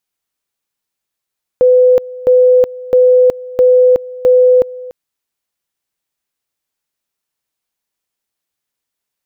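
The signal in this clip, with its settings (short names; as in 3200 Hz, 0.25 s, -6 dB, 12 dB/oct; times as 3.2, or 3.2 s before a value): two-level tone 503 Hz -4.5 dBFS, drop 20 dB, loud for 0.37 s, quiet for 0.29 s, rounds 5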